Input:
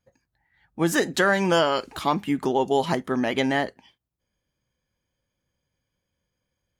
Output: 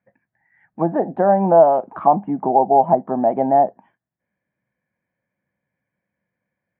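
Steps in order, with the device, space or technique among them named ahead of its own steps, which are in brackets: envelope filter bass rig (touch-sensitive low-pass 770–2000 Hz down, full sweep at -22.5 dBFS; cabinet simulation 88–2300 Hz, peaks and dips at 90 Hz -8 dB, 200 Hz +6 dB, 430 Hz -3 dB, 670 Hz +6 dB, 1.3 kHz -6 dB, 2 kHz -4 dB)

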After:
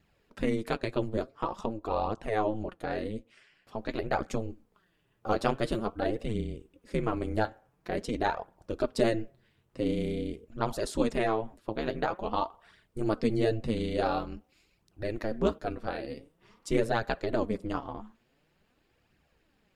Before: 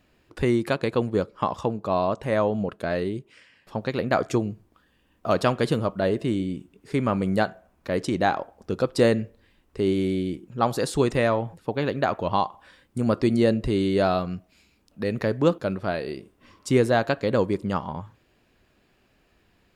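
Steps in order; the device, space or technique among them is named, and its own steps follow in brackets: alien voice (ring modulator 110 Hz; flange 0.47 Hz, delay 0.4 ms, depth 9.1 ms, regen +36%)

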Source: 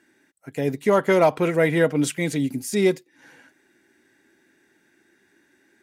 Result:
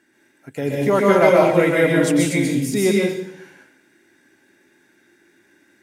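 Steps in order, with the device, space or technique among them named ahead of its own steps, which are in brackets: bathroom (reverberation RT60 0.70 s, pre-delay 119 ms, DRR -3.5 dB)

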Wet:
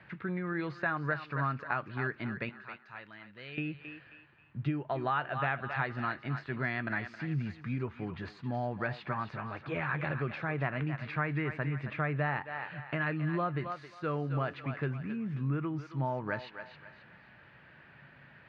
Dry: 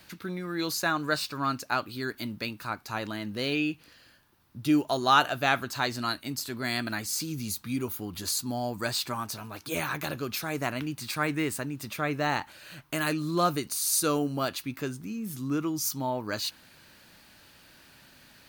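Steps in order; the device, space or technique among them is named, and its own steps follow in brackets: 2.49–3.58 s: pre-emphasis filter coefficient 0.9; thinning echo 268 ms, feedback 37%, high-pass 570 Hz, level -10.5 dB; bass amplifier (compression 4:1, threshold -30 dBFS, peak gain reduction 12.5 dB; cabinet simulation 66–2400 Hz, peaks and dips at 140 Hz +9 dB, 280 Hz -6 dB, 1.8 kHz +5 dB)

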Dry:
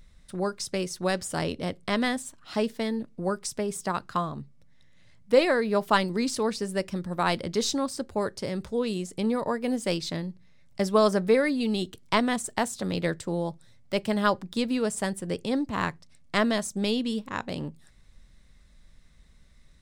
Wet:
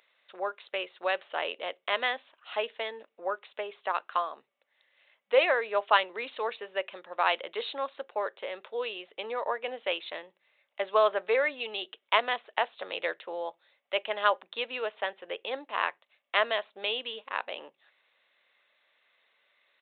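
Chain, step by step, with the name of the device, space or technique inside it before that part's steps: musical greeting card (resampled via 8 kHz; high-pass 520 Hz 24 dB/octave; peaking EQ 2.7 kHz +5.5 dB 0.46 oct)

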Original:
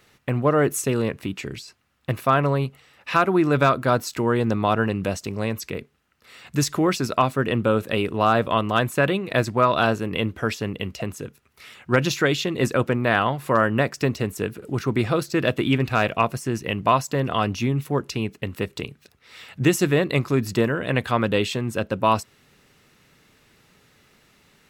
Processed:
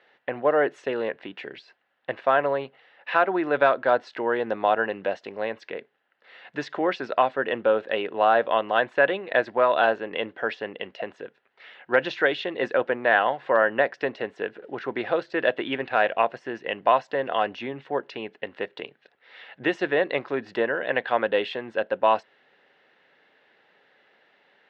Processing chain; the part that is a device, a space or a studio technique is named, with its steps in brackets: phone earpiece (cabinet simulation 480–3200 Hz, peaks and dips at 540 Hz +4 dB, 770 Hz +4 dB, 1.2 kHz -8 dB, 1.7 kHz +5 dB, 2.4 kHz -6 dB)

